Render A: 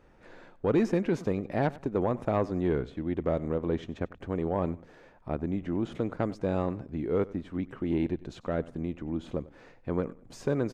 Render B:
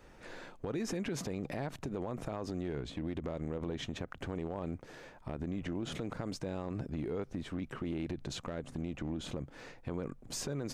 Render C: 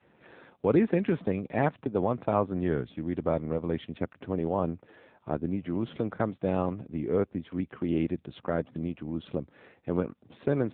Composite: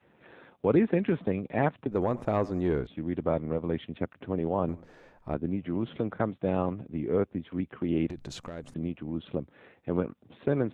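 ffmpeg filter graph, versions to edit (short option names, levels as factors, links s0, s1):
-filter_complex "[0:a]asplit=2[s0][s1];[2:a]asplit=4[s2][s3][s4][s5];[s2]atrim=end=1.912[s6];[s0]atrim=start=1.908:end=2.872[s7];[s3]atrim=start=2.868:end=4.692[s8];[s1]atrim=start=4.688:end=5.342[s9];[s4]atrim=start=5.338:end=8.102[s10];[1:a]atrim=start=8.098:end=8.742[s11];[s5]atrim=start=8.738[s12];[s6][s7]acrossfade=d=0.004:c1=hsin:c2=hsin[s13];[s13][s8]acrossfade=d=0.004:c1=hsin:c2=hsin[s14];[s14][s9]acrossfade=d=0.004:c1=hsin:c2=hsin[s15];[s15][s10]acrossfade=d=0.004:c1=hsin:c2=hsin[s16];[s16][s11]acrossfade=d=0.004:c1=hsin:c2=hsin[s17];[s17][s12]acrossfade=d=0.004:c1=hsin:c2=hsin"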